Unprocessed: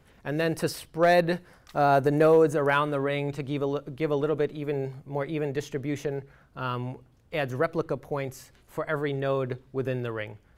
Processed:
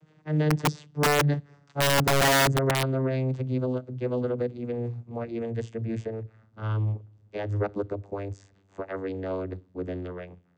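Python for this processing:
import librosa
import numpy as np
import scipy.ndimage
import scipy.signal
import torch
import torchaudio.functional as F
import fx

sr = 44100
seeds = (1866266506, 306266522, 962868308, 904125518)

y = fx.vocoder_glide(x, sr, note=51, semitones=-10)
y = fx.high_shelf(y, sr, hz=4600.0, db=8.0)
y = (np.mod(10.0 ** (17.0 / 20.0) * y + 1.0, 2.0) - 1.0) / 10.0 ** (17.0 / 20.0)
y = y * 10.0 ** (1.0 / 20.0)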